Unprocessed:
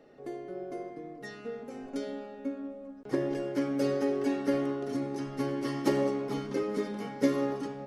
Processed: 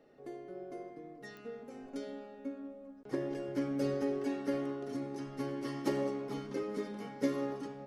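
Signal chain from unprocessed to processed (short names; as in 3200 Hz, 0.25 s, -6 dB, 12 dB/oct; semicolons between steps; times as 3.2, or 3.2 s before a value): 3.48–4.19 low shelf 140 Hz +9.5 dB; pops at 1.37, -31 dBFS; gain -6 dB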